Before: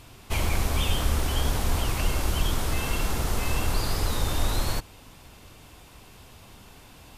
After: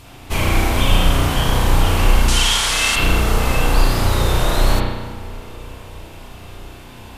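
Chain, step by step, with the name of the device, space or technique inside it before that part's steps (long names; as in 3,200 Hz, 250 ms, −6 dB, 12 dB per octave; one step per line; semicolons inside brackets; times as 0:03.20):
0:02.28–0:02.96: meter weighting curve ITU-R 468
dub delay into a spring reverb (feedback echo with a low-pass in the loop 320 ms, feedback 77%, low-pass 1,900 Hz, level −18 dB; spring reverb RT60 1.1 s, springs 33 ms, chirp 20 ms, DRR −4 dB)
level +5.5 dB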